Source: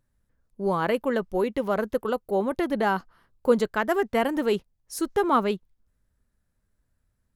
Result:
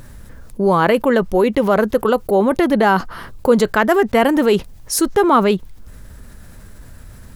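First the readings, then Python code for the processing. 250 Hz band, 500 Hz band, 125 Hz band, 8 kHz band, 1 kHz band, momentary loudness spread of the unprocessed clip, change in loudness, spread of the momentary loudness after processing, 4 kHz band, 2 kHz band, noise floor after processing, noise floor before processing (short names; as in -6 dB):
+11.0 dB, +9.5 dB, +12.0 dB, +15.5 dB, +9.5 dB, 7 LU, +10.0 dB, 6 LU, +10.5 dB, +10.0 dB, -40 dBFS, -75 dBFS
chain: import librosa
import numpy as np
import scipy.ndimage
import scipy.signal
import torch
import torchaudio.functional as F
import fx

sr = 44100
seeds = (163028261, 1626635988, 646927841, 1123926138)

y = fx.env_flatten(x, sr, amount_pct=50)
y = F.gain(torch.from_numpy(y), 6.0).numpy()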